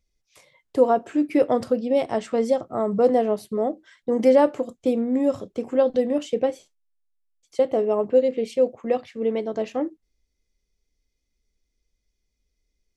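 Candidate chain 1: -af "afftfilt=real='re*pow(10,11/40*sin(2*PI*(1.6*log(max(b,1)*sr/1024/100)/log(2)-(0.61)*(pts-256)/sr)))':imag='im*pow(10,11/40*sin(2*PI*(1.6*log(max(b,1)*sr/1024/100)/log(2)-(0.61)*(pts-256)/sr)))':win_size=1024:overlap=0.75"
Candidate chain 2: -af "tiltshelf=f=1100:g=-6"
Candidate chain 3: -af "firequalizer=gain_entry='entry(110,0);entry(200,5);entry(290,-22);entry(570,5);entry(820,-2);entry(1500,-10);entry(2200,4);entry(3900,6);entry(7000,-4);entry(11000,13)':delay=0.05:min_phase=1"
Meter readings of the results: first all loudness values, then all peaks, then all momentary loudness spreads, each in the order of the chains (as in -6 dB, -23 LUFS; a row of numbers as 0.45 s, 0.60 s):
-21.5 LUFS, -26.5 LUFS, -23.0 LUFS; -2.0 dBFS, -9.5 dBFS, -3.5 dBFS; 10 LU, 8 LU, 9 LU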